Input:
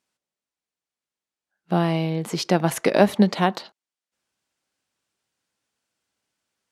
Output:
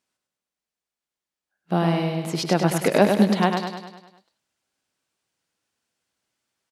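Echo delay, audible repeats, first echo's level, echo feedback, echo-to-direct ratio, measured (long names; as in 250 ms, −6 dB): 101 ms, 6, −5.5 dB, 55%, −4.0 dB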